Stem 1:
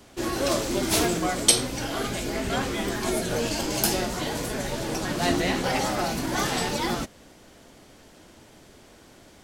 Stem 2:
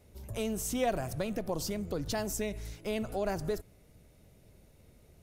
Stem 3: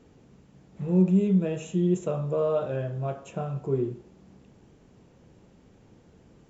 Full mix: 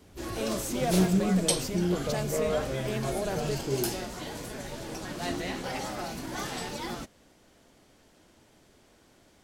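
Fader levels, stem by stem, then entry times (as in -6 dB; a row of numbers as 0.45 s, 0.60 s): -9.0 dB, -0.5 dB, -4.0 dB; 0.00 s, 0.00 s, 0.00 s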